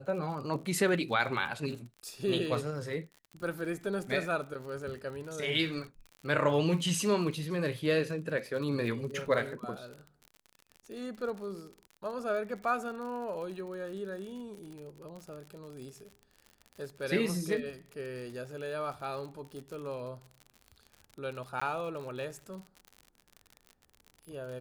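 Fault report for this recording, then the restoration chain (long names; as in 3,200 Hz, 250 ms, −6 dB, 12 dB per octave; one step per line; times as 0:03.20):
surface crackle 52 per second −40 dBFS
0:21.60–0:21.61: drop-out 15 ms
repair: click removal
repair the gap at 0:21.60, 15 ms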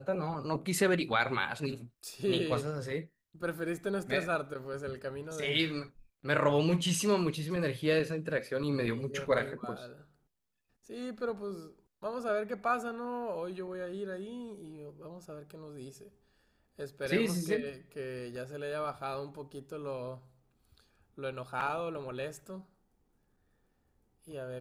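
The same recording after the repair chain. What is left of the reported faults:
none of them is left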